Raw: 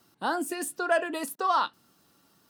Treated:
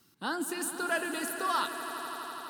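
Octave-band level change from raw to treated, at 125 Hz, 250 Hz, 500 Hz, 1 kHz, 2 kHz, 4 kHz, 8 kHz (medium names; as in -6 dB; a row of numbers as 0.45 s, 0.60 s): no reading, -1.5 dB, -6.5 dB, -5.0 dB, -1.0 dB, +0.5 dB, +1.5 dB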